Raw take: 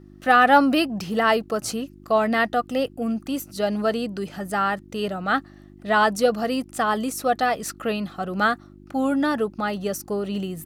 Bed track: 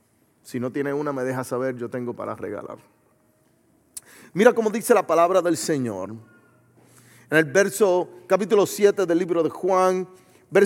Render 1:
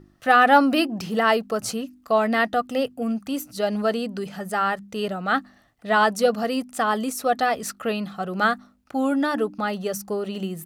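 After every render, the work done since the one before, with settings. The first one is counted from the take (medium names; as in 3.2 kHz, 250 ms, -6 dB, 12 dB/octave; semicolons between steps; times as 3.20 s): de-hum 50 Hz, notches 7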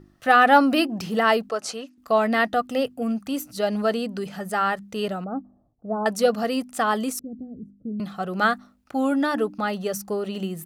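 1.49–1.98 s: band-pass 400–7300 Hz; 5.24–6.06 s: Gaussian low-pass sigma 12 samples; 7.19–8.00 s: inverse Chebyshev low-pass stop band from 980 Hz, stop band 60 dB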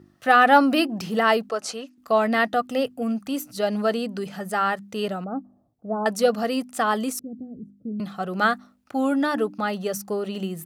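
high-pass 88 Hz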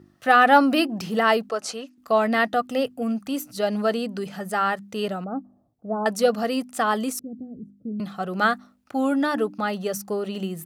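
no audible change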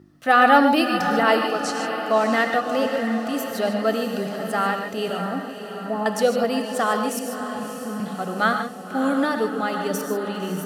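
echo that smears into a reverb 615 ms, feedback 57%, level -9 dB; gated-style reverb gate 170 ms rising, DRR 5.5 dB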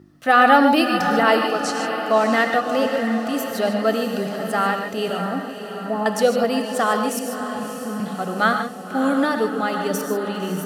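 trim +2 dB; peak limiter -3 dBFS, peak gain reduction 2.5 dB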